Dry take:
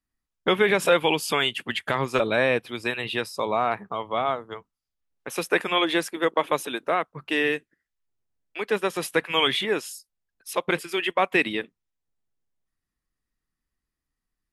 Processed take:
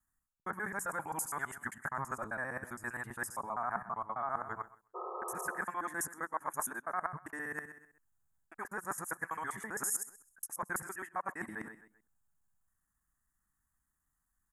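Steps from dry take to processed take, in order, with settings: local time reversal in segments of 66 ms; feedback echo 0.13 s, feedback 32%, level -20 dB; spectral repair 4.98–5.57, 350–1300 Hz after; reverse; compressor 5:1, threshold -36 dBFS, peak gain reduction 18 dB; reverse; EQ curve 190 Hz 0 dB, 480 Hz -11 dB, 830 Hz +4 dB, 1700 Hz +6 dB, 2700 Hz -28 dB, 3900 Hz -29 dB, 6900 Hz +8 dB

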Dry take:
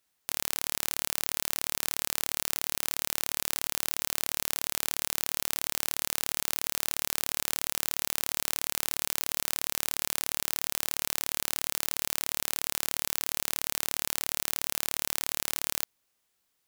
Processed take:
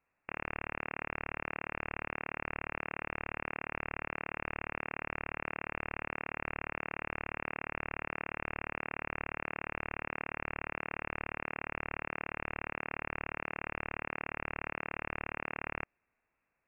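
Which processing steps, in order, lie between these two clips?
inverted band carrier 2700 Hz; gain +1.5 dB

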